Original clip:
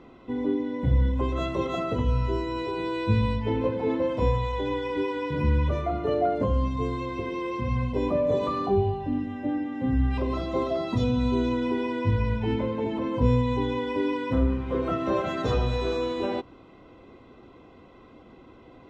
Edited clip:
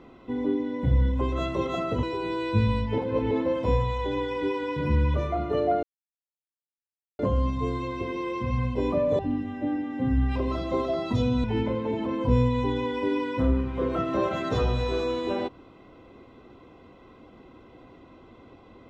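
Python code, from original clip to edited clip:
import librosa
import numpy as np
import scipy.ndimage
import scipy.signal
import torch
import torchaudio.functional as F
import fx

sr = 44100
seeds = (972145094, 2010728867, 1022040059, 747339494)

y = fx.edit(x, sr, fx.cut(start_s=2.03, length_s=0.54),
    fx.reverse_span(start_s=3.52, length_s=0.33),
    fx.insert_silence(at_s=6.37, length_s=1.36),
    fx.cut(start_s=8.37, length_s=0.64),
    fx.cut(start_s=11.26, length_s=1.11), tone=tone)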